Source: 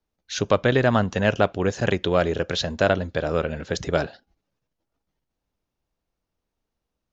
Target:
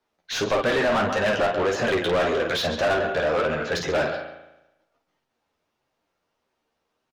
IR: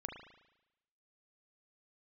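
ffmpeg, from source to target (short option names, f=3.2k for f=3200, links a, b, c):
-filter_complex "[0:a]aecho=1:1:13|52:0.473|0.376,flanger=delay=7.6:depth=4:regen=48:speed=1.7:shape=sinusoidal,asplit=2[a][b];[1:a]atrim=start_sample=2205,adelay=137[c];[b][c]afir=irnorm=-1:irlink=0,volume=-13dB[d];[a][d]amix=inputs=2:normalize=0,asplit=2[e][f];[f]highpass=f=720:p=1,volume=29dB,asoftclip=type=tanh:threshold=-6.5dB[g];[e][g]amix=inputs=2:normalize=0,lowpass=f=2.4k:p=1,volume=-6dB,volume=-7dB"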